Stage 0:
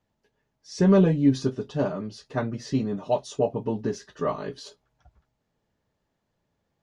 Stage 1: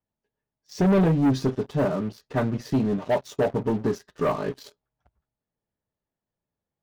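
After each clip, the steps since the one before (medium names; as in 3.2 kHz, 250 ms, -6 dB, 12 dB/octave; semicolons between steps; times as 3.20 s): treble shelf 3.4 kHz -7.5 dB; waveshaping leveller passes 3; trim -6 dB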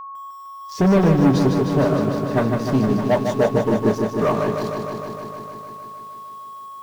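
whistle 1.1 kHz -36 dBFS; bit-crushed delay 153 ms, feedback 80%, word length 9-bit, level -6 dB; trim +4 dB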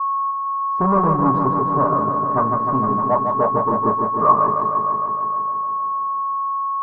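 in parallel at -10.5 dB: crossover distortion -31.5 dBFS; on the sum: resonant low-pass 1.1 kHz, resonance Q 12; trim -7.5 dB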